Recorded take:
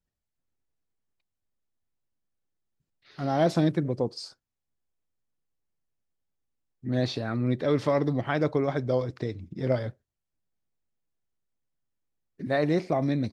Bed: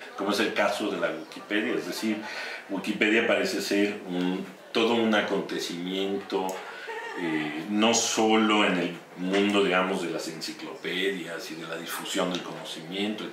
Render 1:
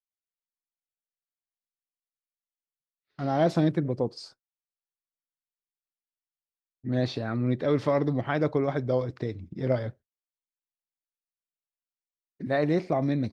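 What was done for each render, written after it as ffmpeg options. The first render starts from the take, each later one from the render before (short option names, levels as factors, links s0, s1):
-af "agate=range=0.0224:threshold=0.00794:ratio=3:detection=peak,highshelf=f=4700:g=-7"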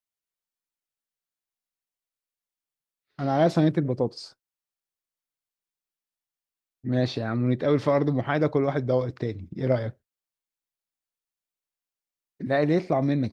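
-af "volume=1.33"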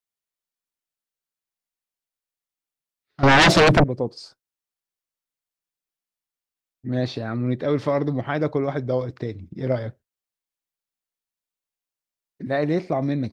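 -filter_complex "[0:a]asettb=1/sr,asplit=3[s0][s1][s2];[s0]atrim=end=3.234[s3];[s1]atrim=start=3.23:end=3.84,asetpts=PTS-STARTPTS,afade=t=in:d=0.004:c=qsin,afade=t=out:st=0.606:d=0.004:c=qsin,aeval=exprs='0.316*sin(PI/2*5.62*val(0)/0.316)':c=same[s4];[s2]atrim=start=3.836[s5];[s3][s4]acrossfade=d=0.004:c1=hsin:c2=qsin[s6];[s6][s5]acrossfade=d=0.004:c1=qsin:c2=hsin"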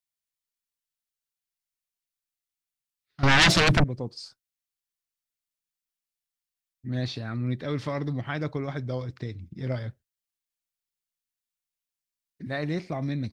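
-af "equalizer=f=520:t=o:w=2.6:g=-11"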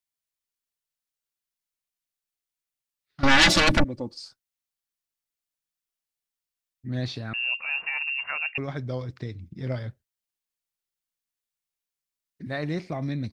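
-filter_complex "[0:a]asettb=1/sr,asplit=3[s0][s1][s2];[s0]atrim=end=3.204[s3];[s1]atrim=start=3.2:end=4.19,asetpts=PTS-STARTPTS,afade=t=in:d=0.004:c=qsin,afade=t=out:st=0.986:d=0.004:c=qsin,aecho=1:1:3.5:0.65,atrim=end_sample=43659[s4];[s2]atrim=start=4.186[s5];[s3][s4]acrossfade=d=0.004:c1=hsin:c2=qsin[s6];[s6][s5]acrossfade=d=0.004:c1=qsin:c2=hsin,asettb=1/sr,asplit=3[s7][s8][s9];[s7]atrim=end=7.334[s10];[s8]atrim=start=7.33:end=8.58,asetpts=PTS-STARTPTS,afade=t=in:d=0.004:c=qsin,afade=t=out:st=1.246:d=0.004:c=qsin,lowpass=f=2500:t=q:w=0.5098,lowpass=f=2500:t=q:w=0.6013,lowpass=f=2500:t=q:w=0.9,lowpass=f=2500:t=q:w=2.563,afreqshift=-2900[s11];[s9]atrim=start=8.576[s12];[s10][s11]acrossfade=d=0.004:c1=hsin:c2=qsin[s13];[s13][s12]acrossfade=d=0.004:c1=qsin:c2=hsin"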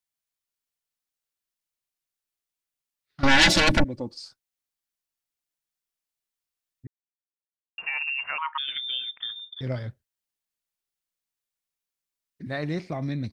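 -filter_complex "[0:a]asettb=1/sr,asplit=3[s0][s1][s2];[s0]atrim=end=3.274[s3];[s1]atrim=start=3.27:end=3.97,asetpts=PTS-STARTPTS,afade=t=in:d=0.004:c=qsin,afade=t=out:st=0.696:d=0.004:c=qsin,asuperstop=centerf=1200:order=4:qfactor=7.9[s4];[s2]atrim=start=3.966[s5];[s3][s4]acrossfade=d=0.004:c1=hsin:c2=qsin[s6];[s6][s5]acrossfade=d=0.004:c1=qsin:c2=hsin,asettb=1/sr,asplit=3[s7][s8][s9];[s7]atrim=end=8.384[s10];[s8]atrim=start=8.38:end=9.61,asetpts=PTS-STARTPTS,afade=t=in:d=0.004:c=qsin,afade=t=out:st=1.226:d=0.004:c=qsin,lowpass=f=3100:t=q:w=0.5098,lowpass=f=3100:t=q:w=0.6013,lowpass=f=3100:t=q:w=0.9,lowpass=f=3100:t=q:w=2.563,afreqshift=-3700[s11];[s9]atrim=start=9.606[s12];[s10][s11]acrossfade=d=0.004:c1=hsin:c2=qsin[s13];[s13][s12]acrossfade=d=0.004:c1=qsin:c2=hsin,asplit=3[s14][s15][s16];[s14]atrim=end=6.87,asetpts=PTS-STARTPTS,afade=t=out:st=6.866:d=0.004:c=hsin[s17];[s15]atrim=start=6.87:end=7.78,asetpts=PTS-STARTPTS,volume=0[s18];[s16]atrim=start=7.78,asetpts=PTS-STARTPTS,afade=t=in:d=0.004:c=hsin[s19];[s17][s18][s19]concat=n=3:v=0:a=1"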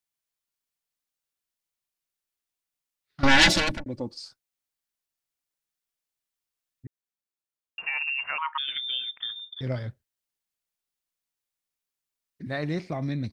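-filter_complex "[0:a]asplit=2[s0][s1];[s0]atrim=end=3.86,asetpts=PTS-STARTPTS,afade=t=out:st=3.44:d=0.42[s2];[s1]atrim=start=3.86,asetpts=PTS-STARTPTS,afade=t=in:d=0.004:c=hsin[s3];[s2][s3]concat=n=2:v=0:a=1"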